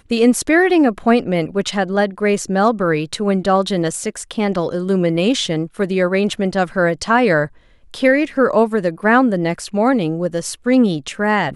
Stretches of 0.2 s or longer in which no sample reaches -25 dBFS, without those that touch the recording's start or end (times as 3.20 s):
7.46–7.94 s